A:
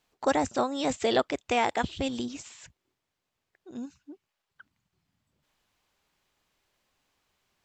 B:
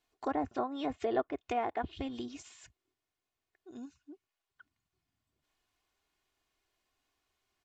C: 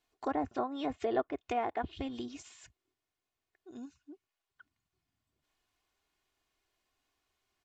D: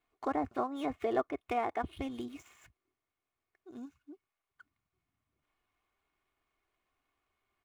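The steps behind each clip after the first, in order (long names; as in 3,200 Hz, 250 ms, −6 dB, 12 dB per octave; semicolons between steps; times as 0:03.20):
treble cut that deepens with the level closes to 1,400 Hz, closed at −23.5 dBFS; comb filter 2.8 ms, depth 50%; level −7.5 dB
no processing that can be heard
running median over 9 samples; hollow resonant body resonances 1,200/2,200 Hz, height 8 dB, ringing for 25 ms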